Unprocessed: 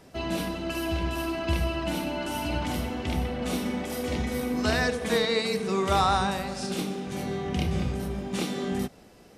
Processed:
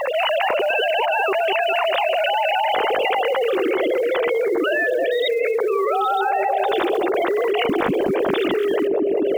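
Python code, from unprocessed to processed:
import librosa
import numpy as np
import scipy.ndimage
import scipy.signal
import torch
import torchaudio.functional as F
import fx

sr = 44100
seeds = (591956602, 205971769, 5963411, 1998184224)

y = fx.sine_speech(x, sr)
y = fx.quant_float(y, sr, bits=4)
y = fx.echo_bbd(y, sr, ms=200, stages=1024, feedback_pct=50, wet_db=-4.5)
y = fx.env_flatten(y, sr, amount_pct=100)
y = y * librosa.db_to_amplitude(-4.5)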